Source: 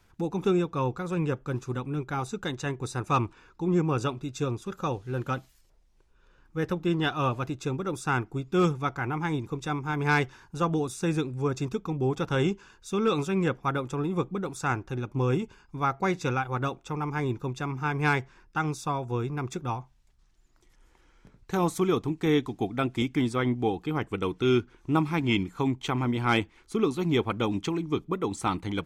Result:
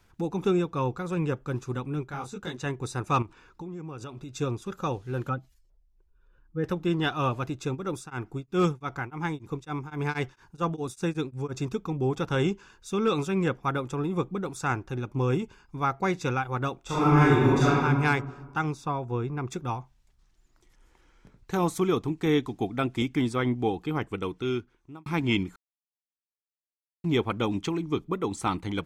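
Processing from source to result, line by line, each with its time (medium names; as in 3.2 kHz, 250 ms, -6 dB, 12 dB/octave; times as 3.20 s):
2.06–2.60 s: detune thickener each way 57 cents -> 42 cents
3.22–4.33 s: compression, threshold -36 dBFS
5.29–6.64 s: spectral contrast enhancement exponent 1.5
7.74–11.57 s: tremolo of two beating tones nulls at 2.4 Hz -> 6.3 Hz
16.82–17.81 s: reverb throw, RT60 1.5 s, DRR -11 dB
18.72–19.48 s: treble shelf 4.5 kHz -12 dB
23.97–25.06 s: fade out
25.56–27.04 s: mute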